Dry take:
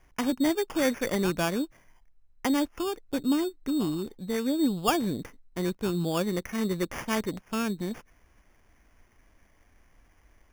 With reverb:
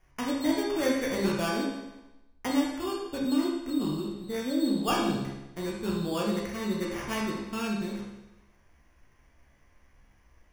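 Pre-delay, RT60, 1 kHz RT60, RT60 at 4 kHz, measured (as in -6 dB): 15 ms, 0.95 s, 0.95 s, 0.90 s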